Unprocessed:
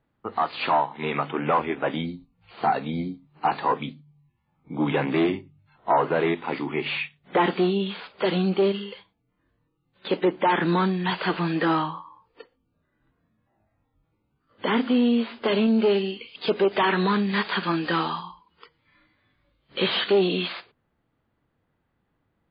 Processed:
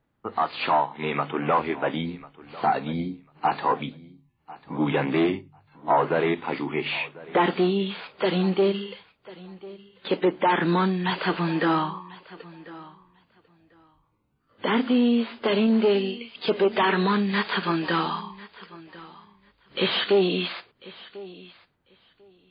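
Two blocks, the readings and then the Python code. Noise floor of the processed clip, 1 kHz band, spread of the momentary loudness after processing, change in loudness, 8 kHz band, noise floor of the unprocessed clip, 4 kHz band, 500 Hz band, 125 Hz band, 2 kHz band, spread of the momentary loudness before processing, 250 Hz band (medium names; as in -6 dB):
-70 dBFS, 0.0 dB, 21 LU, 0.0 dB, no reading, -74 dBFS, 0.0 dB, 0.0 dB, 0.0 dB, 0.0 dB, 11 LU, 0.0 dB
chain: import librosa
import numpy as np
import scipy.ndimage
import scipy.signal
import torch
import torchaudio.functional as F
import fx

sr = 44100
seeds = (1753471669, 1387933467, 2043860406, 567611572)

y = fx.echo_feedback(x, sr, ms=1045, feedback_pct=16, wet_db=-19.5)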